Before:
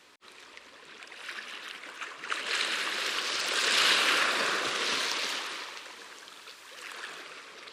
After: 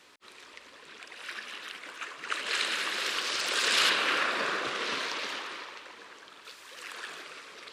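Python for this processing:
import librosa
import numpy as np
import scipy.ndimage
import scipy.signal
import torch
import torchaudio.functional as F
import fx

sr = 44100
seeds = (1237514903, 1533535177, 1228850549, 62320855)

y = fx.high_shelf(x, sr, hz=4500.0, db=-11.5, at=(3.89, 6.45))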